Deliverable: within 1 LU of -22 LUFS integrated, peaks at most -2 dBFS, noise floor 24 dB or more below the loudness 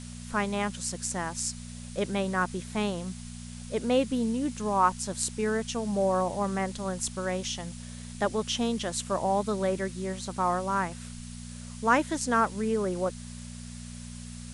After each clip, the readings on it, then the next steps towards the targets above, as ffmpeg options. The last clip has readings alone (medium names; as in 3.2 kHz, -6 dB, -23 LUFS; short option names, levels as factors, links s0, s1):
hum 60 Hz; highest harmonic 240 Hz; hum level -39 dBFS; noise floor -42 dBFS; noise floor target -54 dBFS; loudness -29.5 LUFS; peak level -10.0 dBFS; loudness target -22.0 LUFS
-> -af "bandreject=f=60:t=h:w=4,bandreject=f=120:t=h:w=4,bandreject=f=180:t=h:w=4,bandreject=f=240:t=h:w=4"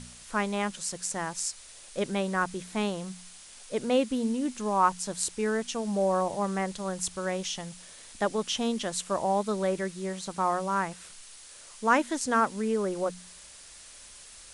hum not found; noise floor -49 dBFS; noise floor target -54 dBFS
-> -af "afftdn=nr=6:nf=-49"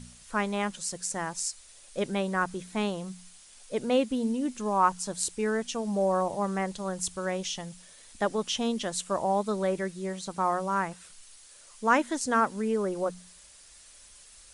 noise floor -53 dBFS; noise floor target -54 dBFS
-> -af "afftdn=nr=6:nf=-53"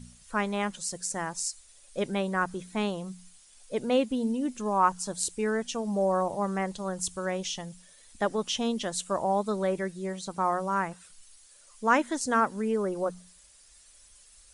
noise floor -57 dBFS; loudness -29.5 LUFS; peak level -10.0 dBFS; loudness target -22.0 LUFS
-> -af "volume=2.37"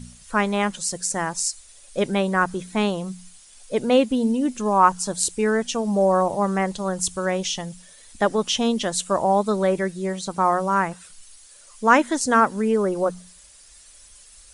loudness -22.0 LUFS; peak level -2.5 dBFS; noise floor -49 dBFS